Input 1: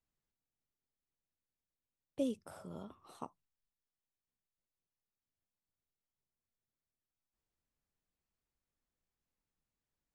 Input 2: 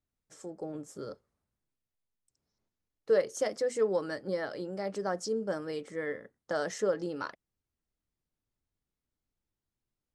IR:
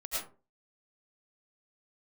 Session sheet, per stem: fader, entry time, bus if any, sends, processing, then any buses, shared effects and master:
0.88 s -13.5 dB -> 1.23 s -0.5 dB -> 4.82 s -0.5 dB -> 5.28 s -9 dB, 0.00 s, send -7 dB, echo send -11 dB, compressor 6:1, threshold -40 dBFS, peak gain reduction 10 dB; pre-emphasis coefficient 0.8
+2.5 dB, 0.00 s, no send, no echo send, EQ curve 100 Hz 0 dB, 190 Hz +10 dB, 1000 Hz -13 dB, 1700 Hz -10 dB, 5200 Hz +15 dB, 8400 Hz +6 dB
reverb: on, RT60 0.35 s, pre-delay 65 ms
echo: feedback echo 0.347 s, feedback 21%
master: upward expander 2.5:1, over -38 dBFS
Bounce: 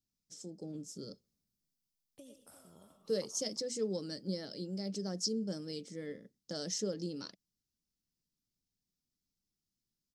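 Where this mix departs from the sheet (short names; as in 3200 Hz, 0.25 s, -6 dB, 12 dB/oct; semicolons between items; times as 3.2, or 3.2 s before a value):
stem 2 +2.5 dB -> -6.5 dB; master: missing upward expander 2.5:1, over -38 dBFS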